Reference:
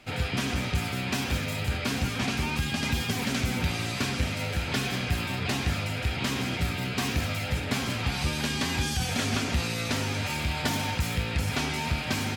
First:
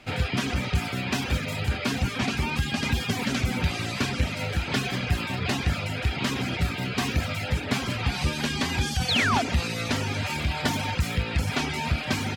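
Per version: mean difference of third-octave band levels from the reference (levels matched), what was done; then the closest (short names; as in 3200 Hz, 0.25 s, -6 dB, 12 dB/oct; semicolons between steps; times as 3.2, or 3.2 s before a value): 2.0 dB: reverb removal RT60 0.61 s; high shelf 7600 Hz -7 dB; painted sound fall, 9.08–9.42, 630–4700 Hz -28 dBFS; gain +3.5 dB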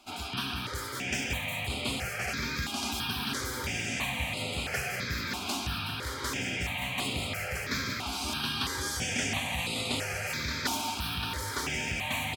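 5.0 dB: low shelf 320 Hz -11.5 dB; feedback echo 0.573 s, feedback 56%, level -7 dB; step phaser 3 Hz 500–5800 Hz; gain +1.5 dB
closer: first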